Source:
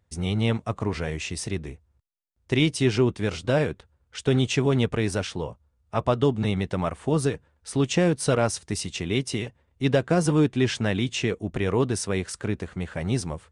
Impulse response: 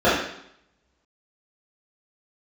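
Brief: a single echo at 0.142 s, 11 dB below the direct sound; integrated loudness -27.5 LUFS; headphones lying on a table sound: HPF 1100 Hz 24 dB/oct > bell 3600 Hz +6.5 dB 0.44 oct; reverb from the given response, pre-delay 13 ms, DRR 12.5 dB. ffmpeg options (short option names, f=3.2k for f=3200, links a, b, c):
-filter_complex "[0:a]aecho=1:1:142:0.282,asplit=2[a][b];[1:a]atrim=start_sample=2205,adelay=13[c];[b][c]afir=irnorm=-1:irlink=0,volume=-36dB[d];[a][d]amix=inputs=2:normalize=0,highpass=f=1.1k:w=0.5412,highpass=f=1.1k:w=1.3066,equalizer=f=3.6k:t=o:w=0.44:g=6.5,volume=4dB"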